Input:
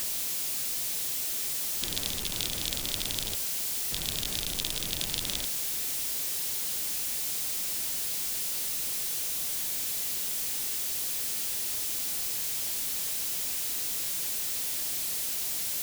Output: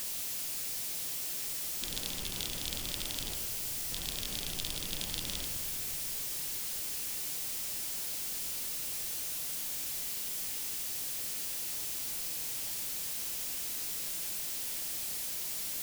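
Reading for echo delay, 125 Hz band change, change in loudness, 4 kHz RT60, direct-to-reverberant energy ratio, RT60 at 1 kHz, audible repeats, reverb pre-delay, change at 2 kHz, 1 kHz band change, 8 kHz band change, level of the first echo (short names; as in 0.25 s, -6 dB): none, -3.5 dB, -5.5 dB, 1.5 s, 3.5 dB, 2.5 s, none, 3 ms, -4.5 dB, -4.0 dB, -5.5 dB, none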